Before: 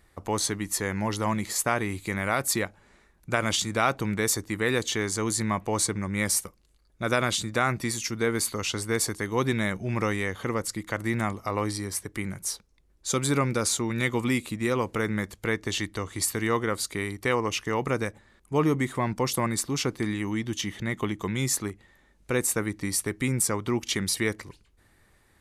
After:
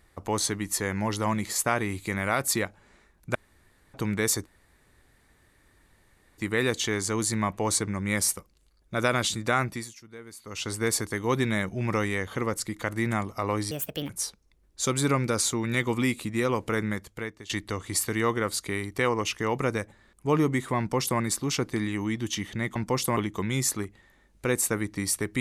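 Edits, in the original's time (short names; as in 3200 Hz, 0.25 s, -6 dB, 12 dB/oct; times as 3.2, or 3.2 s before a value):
3.35–3.94 room tone
4.46 insert room tone 1.92 s
7.68–8.83 dip -18.5 dB, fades 0.34 s
11.79–12.36 speed 148%
15.07–15.76 fade out, to -20.5 dB
19.05–19.46 copy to 21.02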